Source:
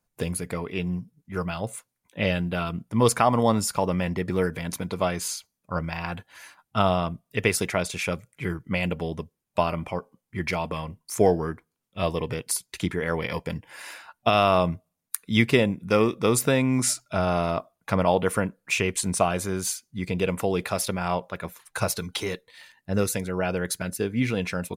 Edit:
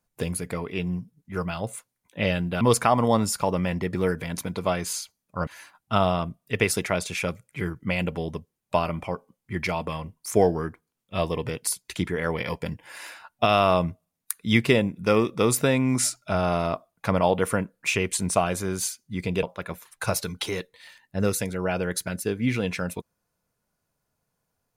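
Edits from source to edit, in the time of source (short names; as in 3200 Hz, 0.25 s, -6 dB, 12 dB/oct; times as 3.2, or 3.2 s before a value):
2.61–2.96 cut
5.82–6.31 cut
20.27–21.17 cut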